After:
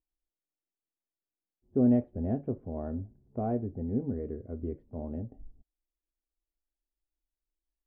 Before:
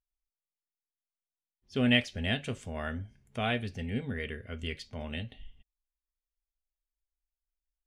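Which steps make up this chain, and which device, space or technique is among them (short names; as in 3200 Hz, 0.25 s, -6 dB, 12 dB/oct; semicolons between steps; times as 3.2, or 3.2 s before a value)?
under water (LPF 800 Hz 24 dB/oct; bell 320 Hz +11.5 dB 0.53 oct)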